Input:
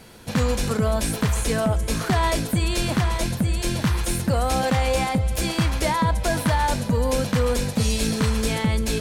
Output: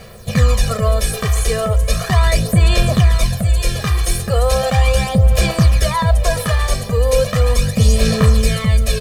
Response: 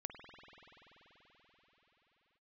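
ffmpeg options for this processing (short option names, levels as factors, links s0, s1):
-af "acrusher=bits=8:mix=0:aa=0.000001,aphaser=in_gain=1:out_gain=1:delay=2.6:decay=0.5:speed=0.37:type=sinusoidal,aecho=1:1:1.7:0.88,volume=1.19"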